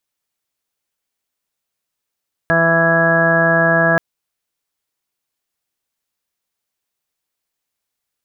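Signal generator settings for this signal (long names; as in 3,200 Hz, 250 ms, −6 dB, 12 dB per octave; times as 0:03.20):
steady harmonic partials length 1.48 s, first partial 166 Hz, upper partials −5/−4.5/3.5/−10/−7/−9/−5/−15/4.5 dB, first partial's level −19 dB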